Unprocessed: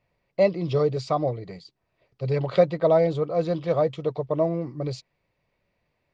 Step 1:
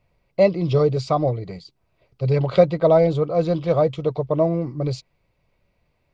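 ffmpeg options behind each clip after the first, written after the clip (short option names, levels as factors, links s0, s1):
-af "lowshelf=f=87:g=10.5,bandreject=f=1800:w=8.9,volume=1.5"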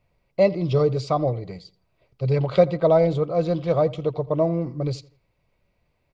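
-filter_complex "[0:a]asplit=2[s0][s1];[s1]adelay=83,lowpass=f=3400:p=1,volume=0.1,asplit=2[s2][s3];[s3]adelay=83,lowpass=f=3400:p=1,volume=0.36,asplit=2[s4][s5];[s5]adelay=83,lowpass=f=3400:p=1,volume=0.36[s6];[s0][s2][s4][s6]amix=inputs=4:normalize=0,volume=0.794"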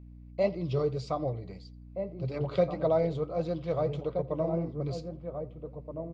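-filter_complex "[0:a]asplit=2[s0][s1];[s1]adelay=1574,volume=0.447,highshelf=f=4000:g=-35.4[s2];[s0][s2]amix=inputs=2:normalize=0,flanger=delay=3.3:depth=7.6:regen=-68:speed=1.7:shape=sinusoidal,aeval=exprs='val(0)+0.00794*(sin(2*PI*60*n/s)+sin(2*PI*2*60*n/s)/2+sin(2*PI*3*60*n/s)/3+sin(2*PI*4*60*n/s)/4+sin(2*PI*5*60*n/s)/5)':c=same,volume=0.562"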